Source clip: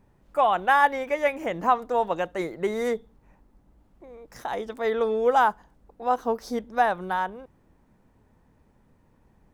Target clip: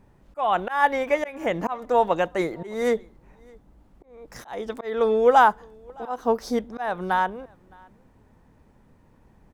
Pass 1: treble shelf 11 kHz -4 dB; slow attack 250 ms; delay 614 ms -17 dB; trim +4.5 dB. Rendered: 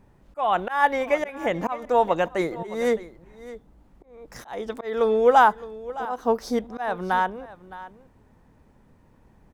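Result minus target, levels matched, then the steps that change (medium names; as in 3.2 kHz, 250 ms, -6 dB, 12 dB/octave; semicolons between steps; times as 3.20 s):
echo-to-direct +11 dB
change: delay 614 ms -28 dB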